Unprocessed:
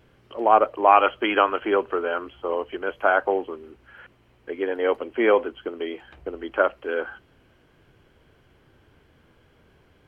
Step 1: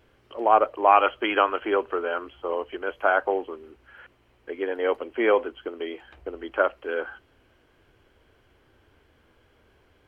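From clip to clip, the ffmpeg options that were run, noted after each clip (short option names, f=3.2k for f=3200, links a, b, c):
-af "equalizer=f=160:t=o:w=0.88:g=-9,volume=-1.5dB"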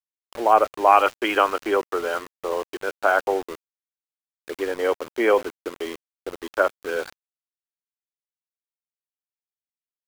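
-af "aeval=exprs='val(0)*gte(abs(val(0)),0.02)':c=same,volume=2dB"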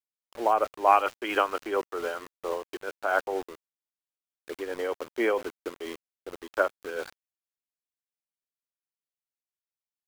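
-af "tremolo=f=4.4:d=0.49,volume=-4dB"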